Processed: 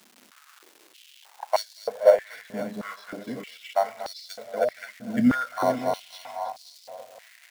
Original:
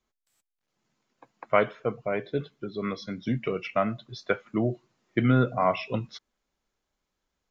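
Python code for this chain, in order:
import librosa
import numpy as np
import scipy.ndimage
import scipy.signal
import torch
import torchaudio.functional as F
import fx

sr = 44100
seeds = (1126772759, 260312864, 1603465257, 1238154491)

p1 = fx.reverse_delay_fb(x, sr, ms=263, feedback_pct=52, wet_db=-3.5)
p2 = fx.high_shelf(p1, sr, hz=3500.0, db=-9.0)
p3 = fx.fixed_phaser(p2, sr, hz=1800.0, stages=8)
p4 = fx.sample_hold(p3, sr, seeds[0], rate_hz=5000.0, jitter_pct=0)
p5 = p3 + F.gain(torch.from_numpy(p4), -6.0).numpy()
p6 = fx.dmg_crackle(p5, sr, seeds[1], per_s=580.0, level_db=-38.0)
p7 = p6 + fx.echo_feedback(p6, sr, ms=236, feedback_pct=49, wet_db=-14.0, dry=0)
p8 = fx.filter_held_highpass(p7, sr, hz=3.2, low_hz=230.0, high_hz=4500.0)
y = F.gain(torch.from_numpy(p8), -2.5).numpy()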